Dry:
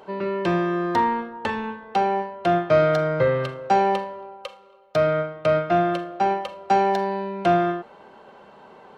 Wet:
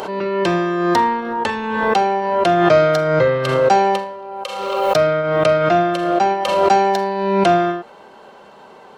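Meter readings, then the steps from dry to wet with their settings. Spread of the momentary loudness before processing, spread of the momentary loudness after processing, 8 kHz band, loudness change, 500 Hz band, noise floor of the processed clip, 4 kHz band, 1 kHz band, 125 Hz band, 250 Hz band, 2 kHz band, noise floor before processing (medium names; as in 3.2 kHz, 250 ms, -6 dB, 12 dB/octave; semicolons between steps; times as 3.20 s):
9 LU, 8 LU, no reading, +6.0 dB, +6.5 dB, -43 dBFS, +10.0 dB, +6.0 dB, +4.0 dB, +5.5 dB, +7.0 dB, -49 dBFS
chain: tone controls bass -3 dB, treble +8 dB; swell ahead of each attack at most 32 dB/s; trim +4.5 dB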